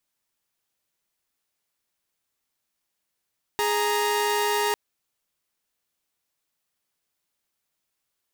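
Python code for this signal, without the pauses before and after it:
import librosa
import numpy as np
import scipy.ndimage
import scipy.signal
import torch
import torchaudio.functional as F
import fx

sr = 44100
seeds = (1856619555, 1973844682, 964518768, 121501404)

y = fx.chord(sr, length_s=1.15, notes=(68, 82), wave='saw', level_db=-22.0)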